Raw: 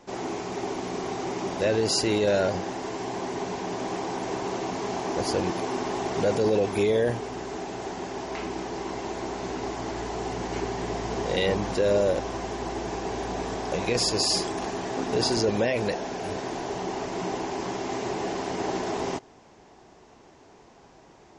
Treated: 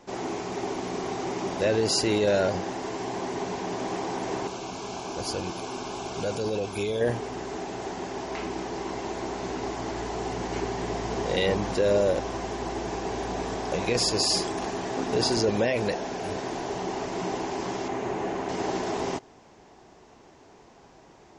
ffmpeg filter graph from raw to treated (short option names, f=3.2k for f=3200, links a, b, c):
-filter_complex "[0:a]asettb=1/sr,asplit=3[a][b][c];[a]atrim=end=4.474[d];[b]atrim=start=4.47:end=7.01,asetpts=PTS-STARTPTS,afade=t=in:d=0.004:c=qsin,afade=t=out:st=2.536:d=0.004:c=qsin,asuperstop=centerf=1900:order=4:qfactor=3.9,equalizer=f=370:w=0.31:g=-6.5[e];[c]atrim=start=7.006[f];[d][e]acrossfade=d=0.004:c1=hsin:c2=qsin[g];[g][f]acrossfade=d=0.004:c1=qsin:c2=hsin,asettb=1/sr,asplit=3[h][i][j];[h]atrim=end=17.884[k];[i]atrim=start=17.88:end=18.49,asetpts=PTS-STARTPTS,afade=t=in:d=0.004:c=qsin,afade=t=out:st=0.606:d=0.004:c=qsin,acrossover=split=3000[l][m];[m]acompressor=threshold=-56dB:ratio=4:attack=1:release=60[n];[l][n]amix=inputs=2:normalize=0,equalizer=f=6.6k:w=5.1:g=7[o];[j]atrim=start=18.486[p];[k][o]acrossfade=d=0.004:c1=hsin:c2=qsin[q];[q][p]acrossfade=d=0.004:c1=qsin:c2=hsin"